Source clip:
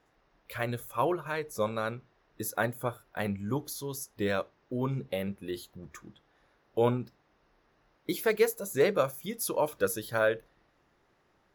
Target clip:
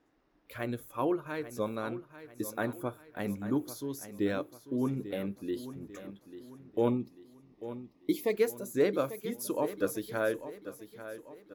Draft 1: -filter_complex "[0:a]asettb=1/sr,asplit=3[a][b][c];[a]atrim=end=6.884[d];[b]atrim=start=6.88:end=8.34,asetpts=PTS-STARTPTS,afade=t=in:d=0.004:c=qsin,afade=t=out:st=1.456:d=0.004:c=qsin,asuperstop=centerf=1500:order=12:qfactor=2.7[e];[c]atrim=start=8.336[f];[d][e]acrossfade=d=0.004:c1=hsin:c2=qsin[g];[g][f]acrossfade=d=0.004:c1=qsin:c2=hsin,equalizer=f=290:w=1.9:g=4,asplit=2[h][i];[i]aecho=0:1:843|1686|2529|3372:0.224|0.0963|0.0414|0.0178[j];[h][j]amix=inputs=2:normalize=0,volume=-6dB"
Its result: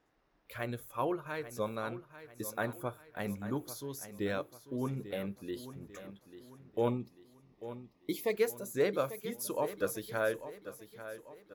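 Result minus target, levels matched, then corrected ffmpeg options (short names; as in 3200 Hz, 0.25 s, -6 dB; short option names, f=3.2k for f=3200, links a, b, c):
250 Hz band -3.0 dB
-filter_complex "[0:a]asettb=1/sr,asplit=3[a][b][c];[a]atrim=end=6.884[d];[b]atrim=start=6.88:end=8.34,asetpts=PTS-STARTPTS,afade=t=in:d=0.004:c=qsin,afade=t=out:st=1.456:d=0.004:c=qsin,asuperstop=centerf=1500:order=12:qfactor=2.7[e];[c]atrim=start=8.336[f];[d][e]acrossfade=d=0.004:c1=hsin:c2=qsin[g];[g][f]acrossfade=d=0.004:c1=qsin:c2=hsin,equalizer=f=290:w=1.9:g=12.5,asplit=2[h][i];[i]aecho=0:1:843|1686|2529|3372:0.224|0.0963|0.0414|0.0178[j];[h][j]amix=inputs=2:normalize=0,volume=-6dB"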